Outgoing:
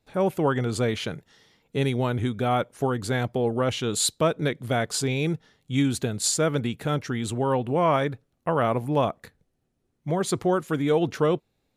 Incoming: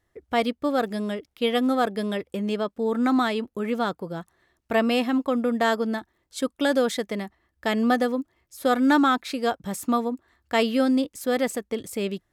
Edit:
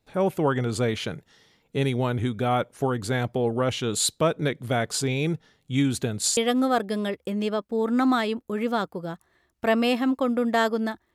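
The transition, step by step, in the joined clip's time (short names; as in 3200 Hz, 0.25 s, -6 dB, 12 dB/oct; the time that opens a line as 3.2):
outgoing
6.37 switch to incoming from 1.44 s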